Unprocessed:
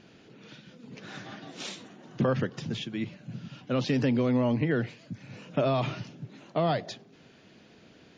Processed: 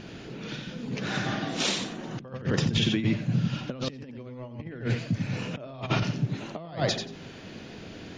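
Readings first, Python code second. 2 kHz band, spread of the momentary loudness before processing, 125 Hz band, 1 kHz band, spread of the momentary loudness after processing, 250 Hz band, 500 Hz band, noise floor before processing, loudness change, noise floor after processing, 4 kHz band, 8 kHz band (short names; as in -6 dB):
+4.5 dB, 19 LU, +3.5 dB, -1.5 dB, 16 LU, 0.0 dB, -4.0 dB, -56 dBFS, -0.5 dB, -44 dBFS, +8.5 dB, n/a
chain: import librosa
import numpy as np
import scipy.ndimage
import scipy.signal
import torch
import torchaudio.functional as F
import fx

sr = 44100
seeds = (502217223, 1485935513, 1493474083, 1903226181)

y = fx.low_shelf(x, sr, hz=71.0, db=11.5)
y = fx.echo_feedback(y, sr, ms=90, feedback_pct=16, wet_db=-6.5)
y = fx.over_compress(y, sr, threshold_db=-33.0, ratio=-0.5)
y = y * 10.0 ** (5.0 / 20.0)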